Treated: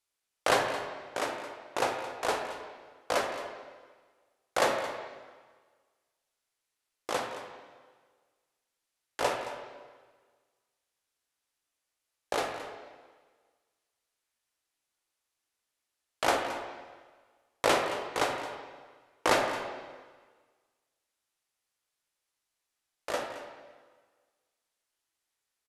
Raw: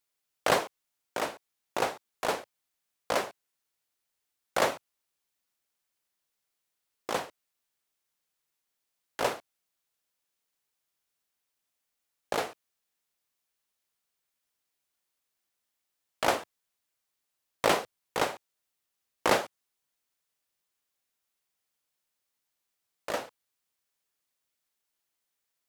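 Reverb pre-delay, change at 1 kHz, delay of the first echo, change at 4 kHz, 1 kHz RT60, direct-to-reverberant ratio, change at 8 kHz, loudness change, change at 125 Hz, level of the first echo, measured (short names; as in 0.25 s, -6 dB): 5 ms, +1.0 dB, 0.22 s, +0.5 dB, 1.5 s, 2.5 dB, 0.0 dB, -0.5 dB, -1.5 dB, -14.5 dB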